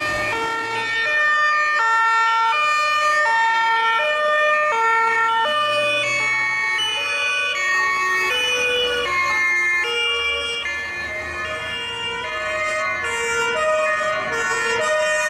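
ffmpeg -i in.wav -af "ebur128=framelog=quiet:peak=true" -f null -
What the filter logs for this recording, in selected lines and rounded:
Integrated loudness:
  I:         -18.3 LUFS
  Threshold: -28.3 LUFS
Loudness range:
  LRA:         5.2 LU
  Threshold: -38.3 LUFS
  LRA low:   -21.8 LUFS
  LRA high:  -16.6 LUFS
True peak:
  Peak:       -9.0 dBFS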